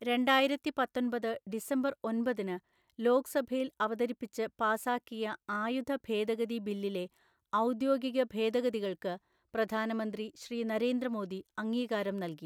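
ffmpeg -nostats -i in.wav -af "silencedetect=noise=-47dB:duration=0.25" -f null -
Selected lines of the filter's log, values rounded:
silence_start: 2.58
silence_end: 2.99 | silence_duration: 0.40
silence_start: 7.07
silence_end: 7.53 | silence_duration: 0.46
silence_start: 9.17
silence_end: 9.54 | silence_duration: 0.37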